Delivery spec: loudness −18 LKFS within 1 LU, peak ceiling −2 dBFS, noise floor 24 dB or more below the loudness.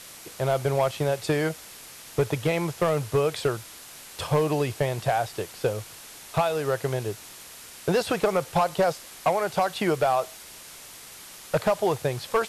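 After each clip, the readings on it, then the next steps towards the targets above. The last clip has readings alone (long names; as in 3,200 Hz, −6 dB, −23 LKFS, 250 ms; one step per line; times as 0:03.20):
share of clipped samples 0.9%; peaks flattened at −15.5 dBFS; background noise floor −45 dBFS; target noise floor −51 dBFS; integrated loudness −26.5 LKFS; sample peak −15.5 dBFS; target loudness −18.0 LKFS
→ clipped peaks rebuilt −15.5 dBFS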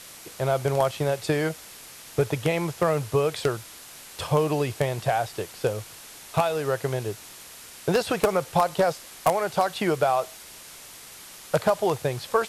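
share of clipped samples 0.0%; background noise floor −45 dBFS; target noise floor −50 dBFS
→ broadband denoise 6 dB, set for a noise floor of −45 dBFS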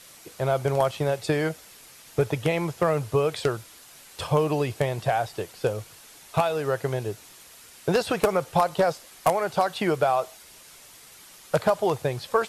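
background noise floor −49 dBFS; target noise floor −50 dBFS
→ broadband denoise 6 dB, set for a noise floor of −49 dBFS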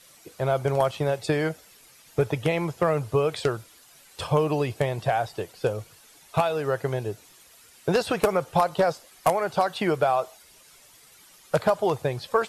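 background noise floor −54 dBFS; integrated loudness −26.0 LKFS; sample peak −6.5 dBFS; target loudness −18.0 LKFS
→ level +8 dB
brickwall limiter −2 dBFS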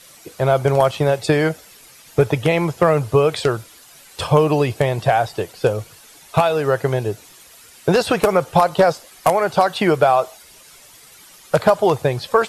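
integrated loudness −18.0 LKFS; sample peak −2.0 dBFS; background noise floor −46 dBFS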